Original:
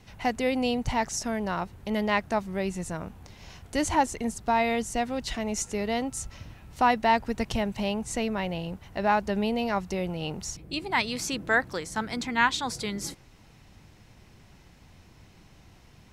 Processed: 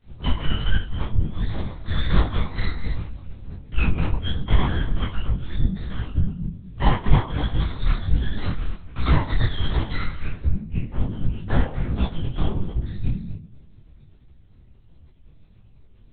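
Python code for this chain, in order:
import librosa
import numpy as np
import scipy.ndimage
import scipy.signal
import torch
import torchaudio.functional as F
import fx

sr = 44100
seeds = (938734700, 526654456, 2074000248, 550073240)

y = fx.octave_mirror(x, sr, pivot_hz=870.0)
y = fx.high_shelf(y, sr, hz=2600.0, db=7.0)
y = fx.transient(y, sr, attack_db=9, sustain_db=-9)
y = np.maximum(y, 0.0)
y = fx.peak_eq(y, sr, hz=190.0, db=12.0, octaves=0.24)
y = y + 10.0 ** (-13.5 / 20.0) * np.pad(y, (int(243 * sr / 1000.0), 0))[:len(y)]
y = fx.room_shoebox(y, sr, seeds[0], volume_m3=860.0, walls='furnished', distance_m=6.3)
y = fx.rider(y, sr, range_db=5, speed_s=0.5)
y = fx.lpc_vocoder(y, sr, seeds[1], excitation='whisper', order=8)
y = fx.detune_double(y, sr, cents=46)
y = y * librosa.db_to_amplitude(-12.5)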